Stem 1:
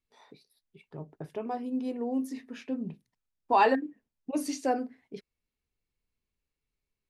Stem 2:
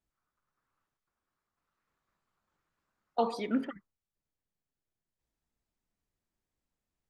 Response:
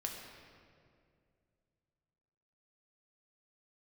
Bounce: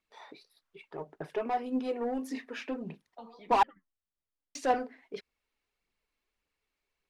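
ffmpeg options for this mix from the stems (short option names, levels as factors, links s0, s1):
-filter_complex "[0:a]equalizer=f=240:t=o:w=1.1:g=-3,asplit=2[s0][s1];[s1]highpass=f=720:p=1,volume=7.94,asoftclip=type=tanh:threshold=0.126[s2];[s0][s2]amix=inputs=2:normalize=0,lowpass=f=2300:p=1,volume=0.501,volume=0.75,asplit=3[s3][s4][s5];[s3]atrim=end=3.63,asetpts=PTS-STARTPTS,afade=t=out:st=3.626:d=0.004:c=hsin[s6];[s4]atrim=start=3.63:end=4.55,asetpts=PTS-STARTPTS,volume=0[s7];[s5]atrim=start=4.55,asetpts=PTS-STARTPTS,afade=t=in:d=0.004:c=hsin[s8];[s6][s7][s8]concat=n=3:v=0:a=1[s9];[1:a]lowpass=f=4600:w=0.5412,lowpass=f=4600:w=1.3066,acrossover=split=150[s10][s11];[s11]acompressor=threshold=0.00631:ratio=2.5[s12];[s10][s12]amix=inputs=2:normalize=0,flanger=delay=8.9:depth=5.7:regen=44:speed=1.1:shape=triangular,volume=0.708[s13];[s9][s13]amix=inputs=2:normalize=0,aphaser=in_gain=1:out_gain=1:delay=3.8:decay=0.39:speed=1.7:type=triangular,equalizer=f=110:w=1.7:g=-7.5"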